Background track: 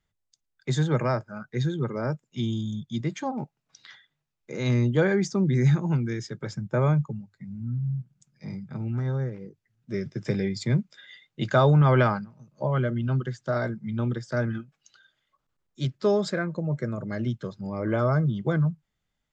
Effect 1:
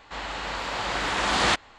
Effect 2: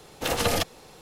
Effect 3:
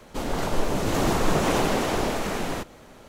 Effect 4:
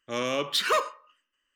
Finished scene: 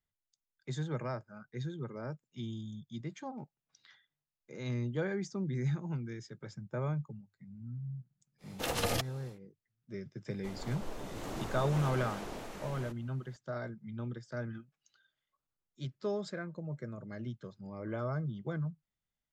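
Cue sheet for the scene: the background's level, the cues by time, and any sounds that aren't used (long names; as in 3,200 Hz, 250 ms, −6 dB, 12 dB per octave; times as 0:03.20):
background track −12.5 dB
0:08.38: mix in 2 −8 dB, fades 0.10 s
0:10.29: mix in 3 −17.5 dB + pitch vibrato 3.4 Hz 41 cents
not used: 1, 4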